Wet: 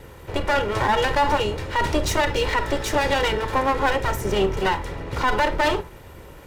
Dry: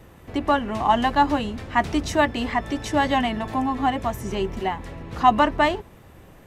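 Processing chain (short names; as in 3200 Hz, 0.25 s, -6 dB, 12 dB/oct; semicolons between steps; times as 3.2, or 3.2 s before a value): minimum comb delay 2.1 ms; reverb RT60 0.25 s, pre-delay 30 ms, DRR 12.5 dB; limiter -18 dBFS, peak gain reduction 11.5 dB; gain +6.5 dB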